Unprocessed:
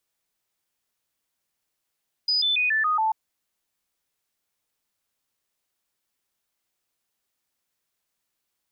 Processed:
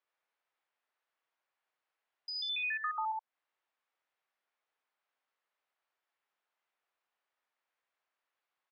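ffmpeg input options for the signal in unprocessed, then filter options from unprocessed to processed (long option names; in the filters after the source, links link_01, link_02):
-f lavfi -i "aevalsrc='0.106*clip(min(mod(t,0.14),0.14-mod(t,0.14))/0.005,0,1)*sin(2*PI*4970*pow(2,-floor(t/0.14)/2)*mod(t,0.14))':duration=0.84:sample_rate=44100"
-filter_complex "[0:a]highpass=630,lowpass=2000,asplit=2[link_01][link_02];[link_02]aecho=0:1:72:0.668[link_03];[link_01][link_03]amix=inputs=2:normalize=0,acompressor=threshold=-37dB:ratio=3"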